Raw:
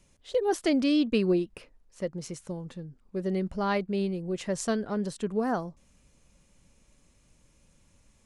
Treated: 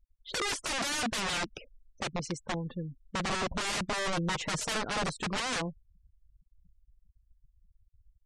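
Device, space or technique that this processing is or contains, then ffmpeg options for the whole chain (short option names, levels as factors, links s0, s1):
overflowing digital effects unit: -filter_complex "[0:a]aeval=exprs='(mod(29.9*val(0)+1,2)-1)/29.9':c=same,lowpass=9700,asettb=1/sr,asplit=3[s0][s1][s2];[s0]atrim=end=4.164[s3];[s1]atrim=start=4.16:end=4.79,asetpts=PTS-STARTPTS,afade=t=in:d=0.004:c=qsin,afade=t=out:st=0.626:d=0.004:c=qsin,aecho=1:1:6.4:0.41,atrim=end_sample=27783[s4];[s2]atrim=start=4.786[s5];[s3][s4]acrossfade=d=0.004:c1=hsin:c2=qsin[s6];[s6][s5]acrossfade=d=0.004:c1=qsin:c2=hsin,afftfilt=real='re*gte(hypot(re,im),0.00631)':imag='im*gte(hypot(re,im),0.00631)':win_size=1024:overlap=0.75,volume=1.41"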